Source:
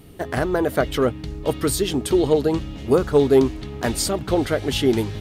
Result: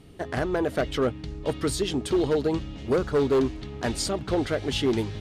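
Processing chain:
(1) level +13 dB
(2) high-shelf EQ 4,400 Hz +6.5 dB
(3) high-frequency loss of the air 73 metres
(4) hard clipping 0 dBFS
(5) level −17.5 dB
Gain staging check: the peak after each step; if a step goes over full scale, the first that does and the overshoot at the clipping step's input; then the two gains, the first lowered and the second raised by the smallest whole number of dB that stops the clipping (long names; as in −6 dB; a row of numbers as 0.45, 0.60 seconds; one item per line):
+6.0, +6.5, +6.0, 0.0, −17.5 dBFS
step 1, 6.0 dB
step 1 +7 dB, step 5 −11.5 dB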